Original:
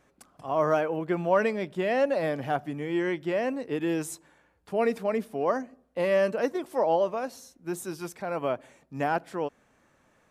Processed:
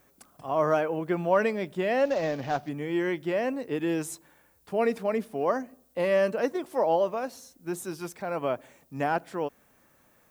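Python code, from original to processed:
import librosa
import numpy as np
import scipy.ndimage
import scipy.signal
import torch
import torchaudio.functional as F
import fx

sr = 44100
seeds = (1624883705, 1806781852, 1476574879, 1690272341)

y = fx.cvsd(x, sr, bps=32000, at=(2.05, 2.69))
y = fx.dmg_noise_colour(y, sr, seeds[0], colour='violet', level_db=-67.0)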